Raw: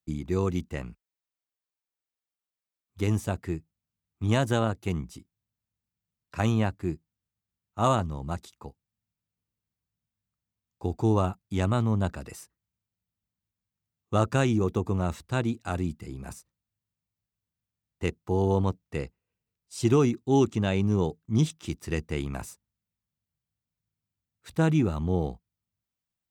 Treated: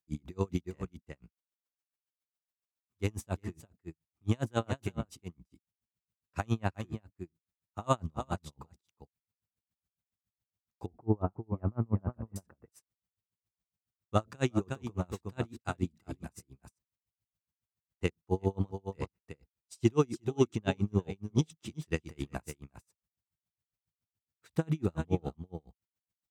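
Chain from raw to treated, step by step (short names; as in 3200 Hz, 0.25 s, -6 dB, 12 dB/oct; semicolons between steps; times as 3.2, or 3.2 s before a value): 10.86–12.36 Gaussian blur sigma 5.8 samples; echo 0.36 s -10 dB; dB-linear tremolo 7.2 Hz, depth 37 dB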